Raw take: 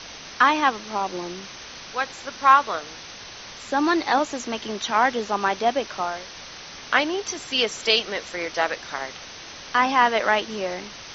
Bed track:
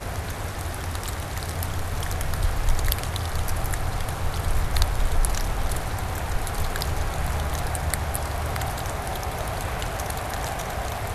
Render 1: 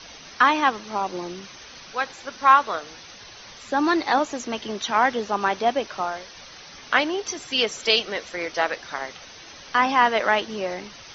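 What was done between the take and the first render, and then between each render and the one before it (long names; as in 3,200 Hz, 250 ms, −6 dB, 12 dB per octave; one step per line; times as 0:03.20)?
broadband denoise 7 dB, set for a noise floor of −40 dBFS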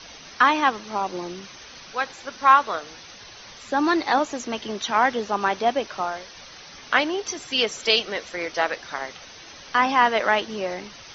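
no processing that can be heard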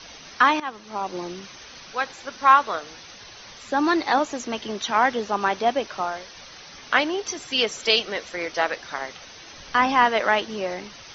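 0:00.60–0:01.20: fade in linear, from −15 dB
0:09.56–0:10.05: low-shelf EQ 110 Hz +10.5 dB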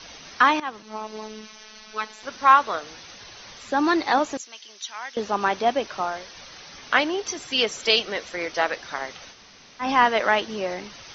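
0:00.82–0:02.23: phases set to zero 216 Hz
0:04.37–0:05.17: first difference
0:09.34–0:09.84: fill with room tone, crossfade 0.10 s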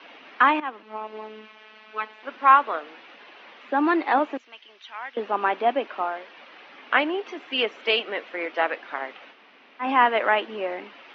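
Chebyshev band-pass filter 260–2,800 Hz, order 3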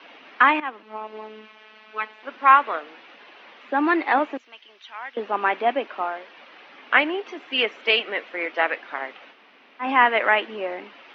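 dynamic equaliser 2,100 Hz, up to +6 dB, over −35 dBFS, Q 1.7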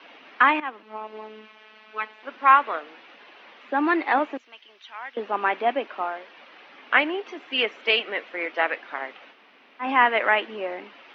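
level −1.5 dB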